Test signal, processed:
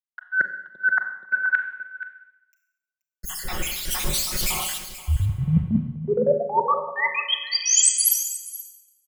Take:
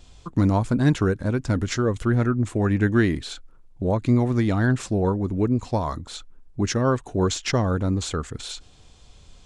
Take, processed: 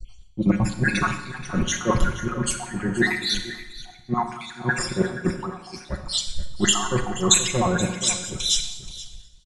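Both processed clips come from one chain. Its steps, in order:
time-frequency cells dropped at random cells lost 69%
downward expander −55 dBFS
comb filter 5.5 ms, depth 76%
reversed playback
downward compressor 5 to 1, threshold −31 dBFS
reversed playback
transient designer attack −4 dB, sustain +6 dB
in parallel at +1 dB: speech leveller within 5 dB 2 s
on the sum: single-tap delay 478 ms −8.5 dB
four-comb reverb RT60 2 s, combs from 30 ms, DRR 5 dB
multiband upward and downward expander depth 100%
level +4.5 dB

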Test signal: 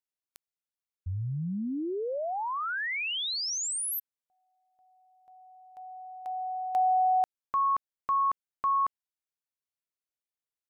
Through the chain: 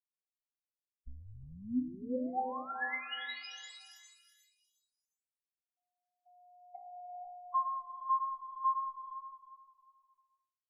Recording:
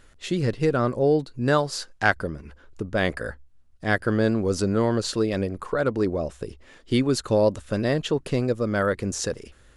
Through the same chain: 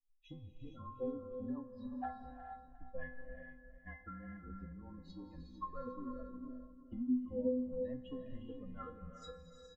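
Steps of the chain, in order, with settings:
spectral dynamics exaggerated over time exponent 3
low-pass filter 1,400 Hz 12 dB per octave
treble cut that deepens with the level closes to 490 Hz, closed at −27.5 dBFS
comb filter 1 ms, depth 63%
downward compressor, threshold −38 dBFS
frequency shifter −27 Hz
stiff-string resonator 250 Hz, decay 0.53 s, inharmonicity 0.008
on a send: repeating echo 357 ms, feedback 32%, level −12 dB
on the sum: reverb whose tail is shaped and stops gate 490 ms rising, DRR 5 dB
level +18 dB

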